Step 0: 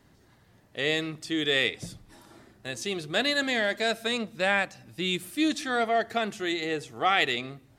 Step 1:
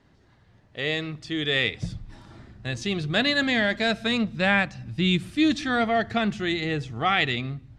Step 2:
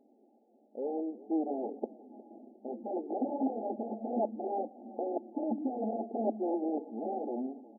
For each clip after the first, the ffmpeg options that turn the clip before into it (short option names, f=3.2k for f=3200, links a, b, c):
-af "lowpass=4.9k,asubboost=boost=6.5:cutoff=170,dynaudnorm=f=690:g=5:m=4dB"
-filter_complex "[0:a]aeval=exprs='(mod(11.2*val(0)+1,2)-1)/11.2':c=same,asplit=4[a][b][c][d];[b]adelay=358,afreqshift=-33,volume=-19dB[e];[c]adelay=716,afreqshift=-66,volume=-26.5dB[f];[d]adelay=1074,afreqshift=-99,volume=-34.1dB[g];[a][e][f][g]amix=inputs=4:normalize=0,afftfilt=real='re*between(b*sr/4096,210,870)':imag='im*between(b*sr/4096,210,870)':win_size=4096:overlap=0.75"